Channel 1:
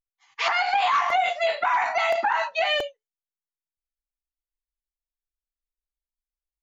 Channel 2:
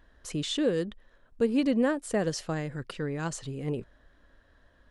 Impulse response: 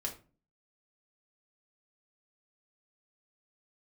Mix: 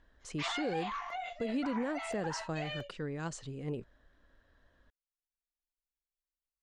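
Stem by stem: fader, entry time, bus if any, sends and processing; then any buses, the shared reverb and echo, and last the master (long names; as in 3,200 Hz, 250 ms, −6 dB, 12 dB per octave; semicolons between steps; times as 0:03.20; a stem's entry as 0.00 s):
−8.0 dB, 0.00 s, no send, automatic ducking −10 dB, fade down 0.95 s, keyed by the second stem
−6.0 dB, 0.00 s, no send, low-pass filter 8,400 Hz 24 dB per octave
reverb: not used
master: brickwall limiter −26.5 dBFS, peak gain reduction 7.5 dB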